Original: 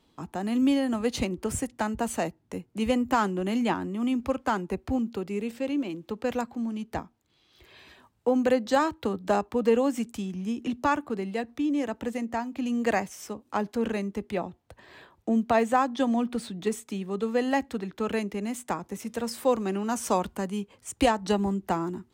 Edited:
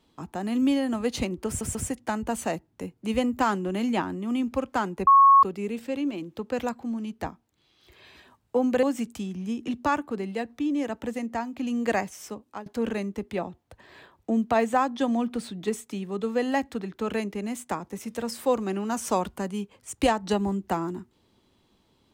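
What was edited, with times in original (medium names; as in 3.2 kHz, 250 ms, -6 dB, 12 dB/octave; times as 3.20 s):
1.47 s: stutter 0.14 s, 3 plays
4.79–5.15 s: bleep 1.1 kHz -11.5 dBFS
8.55–9.82 s: delete
13.20–13.65 s: fade out equal-power, to -20 dB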